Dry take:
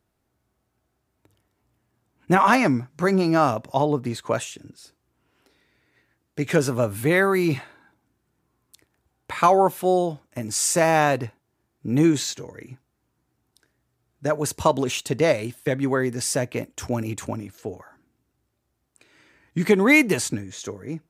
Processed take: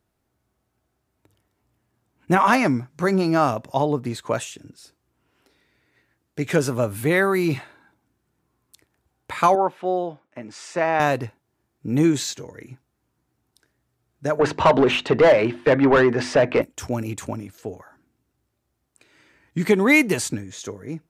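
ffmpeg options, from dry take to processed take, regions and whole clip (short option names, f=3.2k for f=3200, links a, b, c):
-filter_complex "[0:a]asettb=1/sr,asplit=3[a][b][c];[a]atrim=end=9.554[d];[b]atrim=start=9.55:end=11,asetpts=PTS-STARTPTS,afade=t=in:d=0.004:c=qsin,afade=t=out:st=1.446:d=0.004:c=qsin,highpass=170,lowpass=2.5k,lowshelf=f=490:g=-6[e];[c]atrim=start=10.996[f];[d][e]acrossfade=d=0.004:c1=hsin:c2=qsin[g];[g][f]acrossfade=d=0.004:c1=qsin:c2=hsin,asettb=1/sr,asplit=3[h][i][j];[h]atrim=end=14.394[k];[i]atrim=start=14.39:end=16.62,asetpts=PTS-STARTPTS,afade=t=in:d=0.004:c=qsin,afade=t=out:st=2.226:d=0.004:c=qsin,lowpass=3k,asplit=2[l][m];[m]highpass=f=720:p=1,volume=25dB,asoftclip=type=tanh:threshold=-5dB[n];[l][n]amix=inputs=2:normalize=0,lowpass=f=1.4k:p=1,volume=-6dB,bandreject=f=50:t=h:w=6,bandreject=f=100:t=h:w=6,bandreject=f=150:t=h:w=6,bandreject=f=200:t=h:w=6,bandreject=f=250:t=h:w=6,bandreject=f=300:t=h:w=6,bandreject=f=350:t=h:w=6[o];[j]atrim=start=16.616[p];[k][o]acrossfade=d=0.004:c1=hsin:c2=qsin[q];[q][p]acrossfade=d=0.004:c1=qsin:c2=hsin"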